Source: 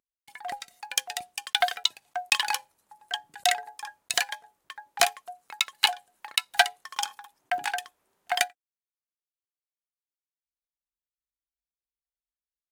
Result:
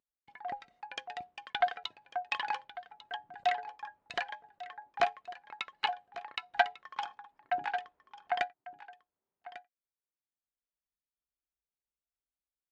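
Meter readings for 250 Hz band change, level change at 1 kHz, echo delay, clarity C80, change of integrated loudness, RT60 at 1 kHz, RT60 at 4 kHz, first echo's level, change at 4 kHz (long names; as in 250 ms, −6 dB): −1.0 dB, −3.0 dB, 1,147 ms, no reverb audible, −8.5 dB, no reverb audible, no reverb audible, −16.0 dB, −14.5 dB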